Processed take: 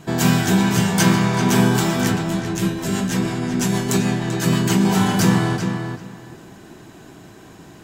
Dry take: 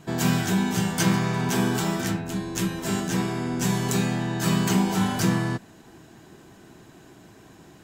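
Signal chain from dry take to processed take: 2.23–4.85 rotary speaker horn 6.3 Hz; darkening echo 0.389 s, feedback 20%, low-pass 4300 Hz, level -6.5 dB; gain +6 dB

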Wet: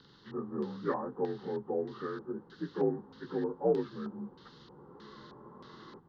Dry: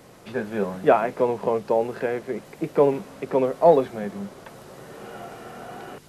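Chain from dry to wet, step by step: inharmonic rescaling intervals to 85%; fixed phaser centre 2400 Hz, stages 6; LFO low-pass square 1.6 Hz 770–4000 Hz; gain -6 dB

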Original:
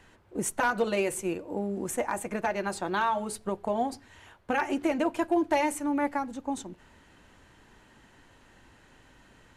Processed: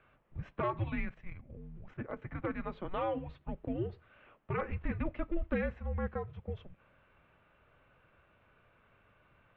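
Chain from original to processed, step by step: mistuned SSB -360 Hz 220–3400 Hz; 1.05–2.22 level quantiser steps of 10 dB; gain -7 dB

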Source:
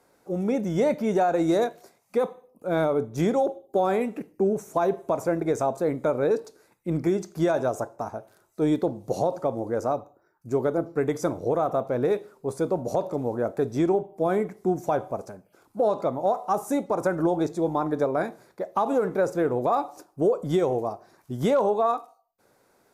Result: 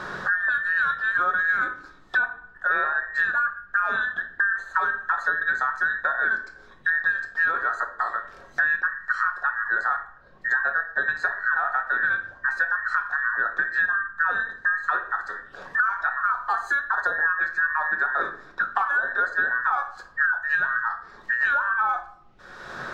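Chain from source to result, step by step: band inversion scrambler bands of 2000 Hz; low shelf 250 Hz -4 dB; added noise brown -65 dBFS; air absorption 180 m; shoebox room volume 350 m³, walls furnished, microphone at 1 m; three-band squash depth 100%

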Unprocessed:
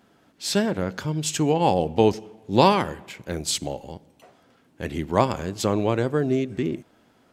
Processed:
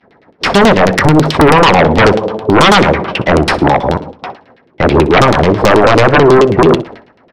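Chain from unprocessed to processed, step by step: median filter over 9 samples; expander -48 dBFS; bell 4200 Hz +12 dB 0.35 oct; in parallel at +1.5 dB: limiter -12 dBFS, peak gain reduction 10.5 dB; on the sum: compressor 1.5:1, threshold -28 dBFS, peak gain reduction 7.5 dB; soft clip -13.5 dBFS, distortion -16 dB; LFO low-pass saw down 9.2 Hz 280–3000 Hz; formant shift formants +4 st; sine folder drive 13 dB, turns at -6.5 dBFS; feedback echo 62 ms, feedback 35%, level -19 dB; gain +4 dB

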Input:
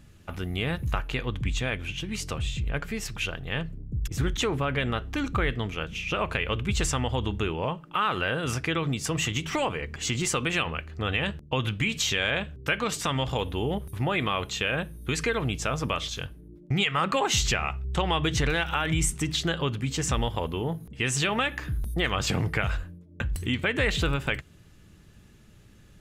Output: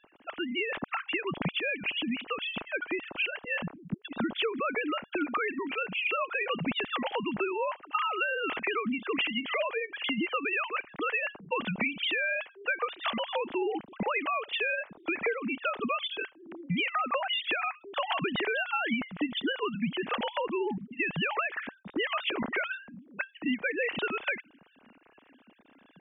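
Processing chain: sine-wave speech; bell 2700 Hz +4 dB 0.85 oct; compressor, threshold -27 dBFS, peak gain reduction 11 dB

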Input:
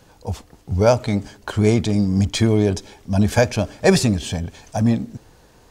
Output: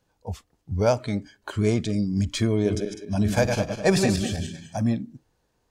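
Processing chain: 2.55–4.76 regenerating reverse delay 0.101 s, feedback 56%, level -5 dB; spectral noise reduction 14 dB; gain -6 dB

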